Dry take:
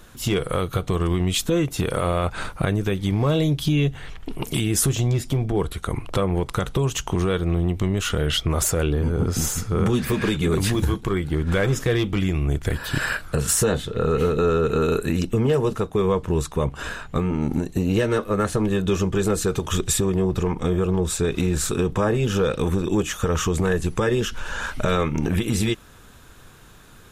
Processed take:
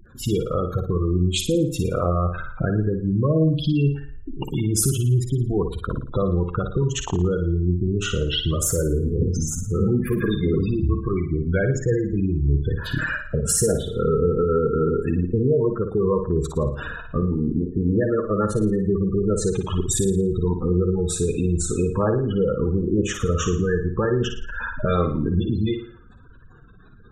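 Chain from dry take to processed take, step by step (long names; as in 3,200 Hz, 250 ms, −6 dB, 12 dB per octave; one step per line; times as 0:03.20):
gate on every frequency bin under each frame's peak −15 dB strong
on a send: flutter between parallel walls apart 9.7 metres, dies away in 0.48 s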